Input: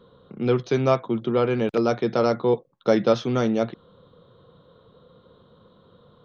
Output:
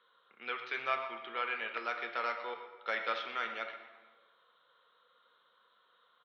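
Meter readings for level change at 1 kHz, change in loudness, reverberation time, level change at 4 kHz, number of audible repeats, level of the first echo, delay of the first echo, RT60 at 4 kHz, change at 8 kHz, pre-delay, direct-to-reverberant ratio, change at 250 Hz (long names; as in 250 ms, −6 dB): −7.5 dB, −14.0 dB, 1.4 s, −6.5 dB, 1, −14.0 dB, 123 ms, 0.95 s, can't be measured, 4 ms, 5.0 dB, −31.5 dB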